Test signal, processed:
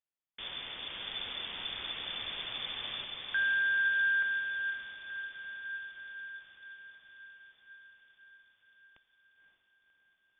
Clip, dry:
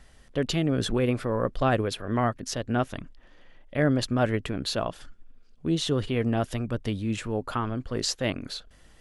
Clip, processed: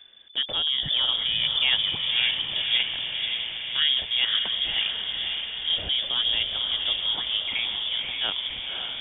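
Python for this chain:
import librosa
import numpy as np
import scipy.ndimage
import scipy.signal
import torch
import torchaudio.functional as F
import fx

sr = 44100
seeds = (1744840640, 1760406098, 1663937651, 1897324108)

y = fx.echo_diffused(x, sr, ms=539, feedback_pct=67, wet_db=-4.0)
y = fx.freq_invert(y, sr, carrier_hz=3500)
y = y * librosa.db_to_amplitude(-1.0)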